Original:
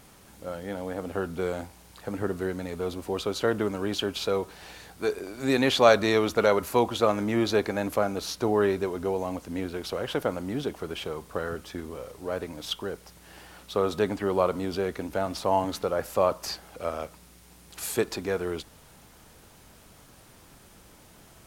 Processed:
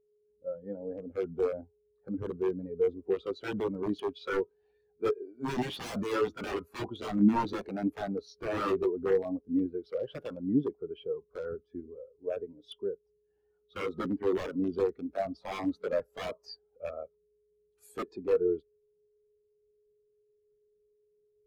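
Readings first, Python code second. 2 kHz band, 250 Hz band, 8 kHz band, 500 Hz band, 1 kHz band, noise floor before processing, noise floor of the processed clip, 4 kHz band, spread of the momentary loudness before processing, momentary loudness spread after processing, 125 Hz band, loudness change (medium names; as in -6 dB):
-10.0 dB, -2.0 dB, under -15 dB, -5.5 dB, -9.0 dB, -54 dBFS, -73 dBFS, -13.5 dB, 14 LU, 12 LU, -6.5 dB, -5.0 dB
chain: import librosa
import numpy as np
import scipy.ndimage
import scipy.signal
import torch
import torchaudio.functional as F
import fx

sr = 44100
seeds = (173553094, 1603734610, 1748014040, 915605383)

y = x + 10.0 ** (-48.0 / 20.0) * np.sin(2.0 * np.pi * 420.0 * np.arange(len(x)) / sr)
y = (np.mod(10.0 ** (21.0 / 20.0) * y + 1.0, 2.0) - 1.0) / 10.0 ** (21.0 / 20.0)
y = fx.spectral_expand(y, sr, expansion=2.5)
y = F.gain(torch.from_numpy(y), 7.5).numpy()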